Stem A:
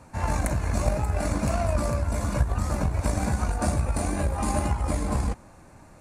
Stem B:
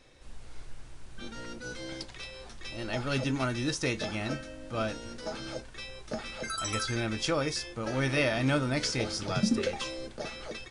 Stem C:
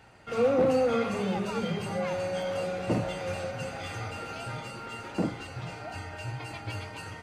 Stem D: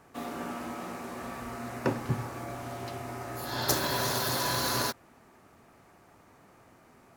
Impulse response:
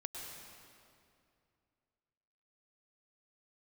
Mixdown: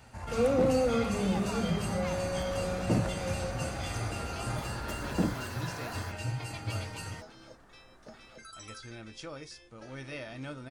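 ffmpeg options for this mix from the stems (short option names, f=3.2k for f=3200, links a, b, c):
-filter_complex "[0:a]acompressor=threshold=-28dB:ratio=3,volume=-10.5dB[a];[1:a]adelay=1950,volume=-14dB[b];[2:a]bass=f=250:g=6,treble=f=4k:g=9,volume=-3dB[c];[3:a]highshelf=f=2.1k:t=q:w=3:g=-6,acompressor=threshold=-37dB:ratio=6,adelay=1200,volume=-4dB[d];[a][b][c][d]amix=inputs=4:normalize=0"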